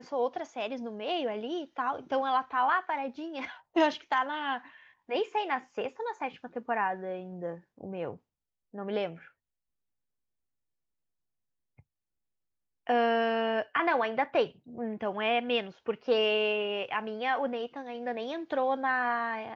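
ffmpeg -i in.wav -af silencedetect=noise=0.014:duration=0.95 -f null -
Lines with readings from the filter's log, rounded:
silence_start: 9.12
silence_end: 12.87 | silence_duration: 3.75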